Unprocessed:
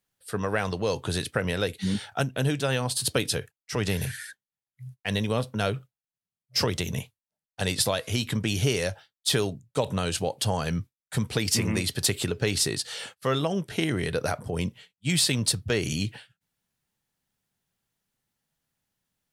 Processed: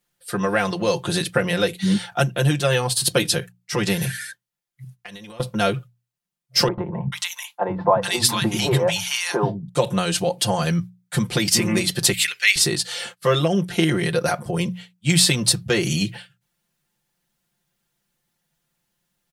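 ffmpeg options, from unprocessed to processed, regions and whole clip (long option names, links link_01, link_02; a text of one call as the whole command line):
ffmpeg -i in.wav -filter_complex "[0:a]asettb=1/sr,asplit=3[link_01][link_02][link_03];[link_01]atrim=end=4.844[link_04];[link_02]atrim=start=4.84:end=5.4,asetpts=PTS-STARTPTS,afade=type=in:duration=0.004:curve=qsin,afade=type=out:start_time=0.556:duration=0.004:curve=qsin,lowshelf=frequency=410:gain=-7.5,acompressor=threshold=-41dB:ratio=10:attack=3.2:release=140:knee=1:detection=peak[link_05];[link_03]atrim=start=5.396[link_06];[link_04][link_05]acrossfade=duration=0.004:curve1=hsin:curve2=qsin[link_07];[link_07][link_06]acrossfade=duration=0.004:curve1=qsin:curve2=hsin,asettb=1/sr,asplit=3[link_08][link_09][link_10];[link_08]atrim=end=6.684[link_11];[link_09]atrim=start=6.68:end=9.69,asetpts=PTS-STARTPTS,afade=type=in:duration=0.004:curve=qsin,afade=type=out:start_time=3.006:duration=0.004:curve=qsin,equalizer=frequency=940:width=2:gain=14,acrossover=split=240|1300[link_12][link_13][link_14];[link_12]adelay=90[link_15];[link_14]adelay=440[link_16];[link_15][link_13][link_16]amix=inputs=3:normalize=0,atrim=end_sample=132741[link_17];[link_10]atrim=start=9.686[link_18];[link_11][link_17]acrossfade=duration=0.004:curve1=hsin:curve2=qsin[link_19];[link_19][link_18]acrossfade=duration=0.004:curve1=qsin:curve2=hsin,asettb=1/sr,asplit=3[link_20][link_21][link_22];[link_20]atrim=end=12.134[link_23];[link_21]atrim=start=12.13:end=12.56,asetpts=PTS-STARTPTS,afade=type=in:duration=0.004:curve=qsin,afade=type=out:start_time=0.426:duration=0.004:curve=qsin,highpass=frequency=2100:width_type=q:width=3.9,highshelf=frequency=5400:gain=6.5[link_24];[link_22]atrim=start=12.556[link_25];[link_23][link_24]acrossfade=duration=0.004:curve1=hsin:curve2=qsin[link_26];[link_26][link_25]acrossfade=duration=0.004:curve1=qsin:curve2=hsin,bandreject=frequency=60:width_type=h:width=6,bandreject=frequency=120:width_type=h:width=6,bandreject=frequency=180:width_type=h:width=6,aecho=1:1:5.7:0.92,volume=4dB" out.wav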